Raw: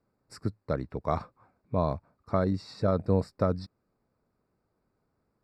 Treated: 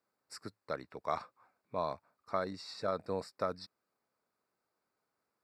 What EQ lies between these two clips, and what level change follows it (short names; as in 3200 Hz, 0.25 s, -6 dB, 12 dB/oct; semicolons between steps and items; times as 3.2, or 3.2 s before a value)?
HPF 1400 Hz 6 dB/oct; +1.0 dB